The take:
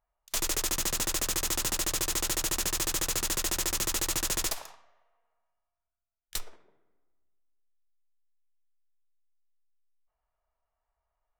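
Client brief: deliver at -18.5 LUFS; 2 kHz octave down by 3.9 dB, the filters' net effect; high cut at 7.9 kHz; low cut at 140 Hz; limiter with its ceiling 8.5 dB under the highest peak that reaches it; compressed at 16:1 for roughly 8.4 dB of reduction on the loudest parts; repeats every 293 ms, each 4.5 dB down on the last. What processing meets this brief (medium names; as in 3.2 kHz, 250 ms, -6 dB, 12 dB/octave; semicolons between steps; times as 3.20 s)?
high-pass 140 Hz; low-pass 7.9 kHz; peaking EQ 2 kHz -5 dB; compression 16:1, threshold -37 dBFS; peak limiter -31.5 dBFS; feedback delay 293 ms, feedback 60%, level -4.5 dB; trim +22 dB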